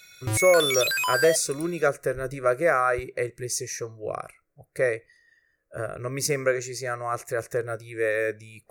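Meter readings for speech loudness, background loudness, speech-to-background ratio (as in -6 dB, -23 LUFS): -26.5 LUFS, -25.0 LUFS, -1.5 dB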